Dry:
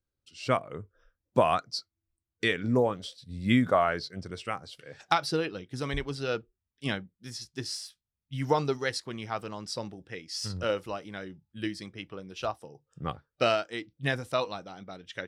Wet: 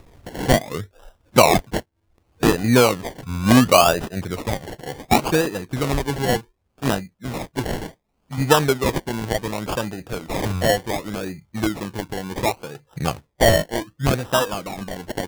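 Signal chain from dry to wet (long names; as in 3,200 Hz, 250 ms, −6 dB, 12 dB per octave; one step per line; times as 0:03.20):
in parallel at +2 dB: upward compression, threshold −28 dBFS
0:07.71–0:08.38: on the sum: phaser with its sweep stopped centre 380 Hz, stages 6
sample-and-hold swept by an LFO 28×, swing 60% 0.68 Hz
level +3 dB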